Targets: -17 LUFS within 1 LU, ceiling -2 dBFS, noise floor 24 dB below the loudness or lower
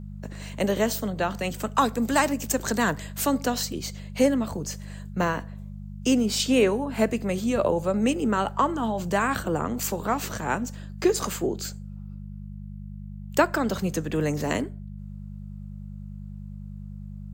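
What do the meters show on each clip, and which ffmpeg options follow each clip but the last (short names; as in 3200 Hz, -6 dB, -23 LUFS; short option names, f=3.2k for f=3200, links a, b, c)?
hum 50 Hz; harmonics up to 200 Hz; hum level -35 dBFS; loudness -26.0 LUFS; peak -8.5 dBFS; loudness target -17.0 LUFS
-> -af "bandreject=f=50:t=h:w=4,bandreject=f=100:t=h:w=4,bandreject=f=150:t=h:w=4,bandreject=f=200:t=h:w=4"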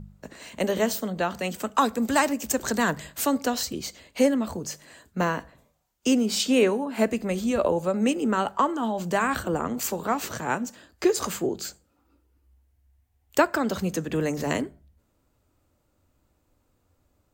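hum none; loudness -26.0 LUFS; peak -8.5 dBFS; loudness target -17.0 LUFS
-> -af "volume=9dB,alimiter=limit=-2dB:level=0:latency=1"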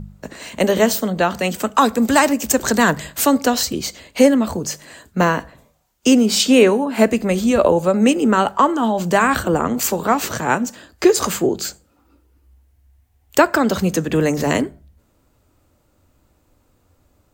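loudness -17.5 LUFS; peak -2.0 dBFS; noise floor -61 dBFS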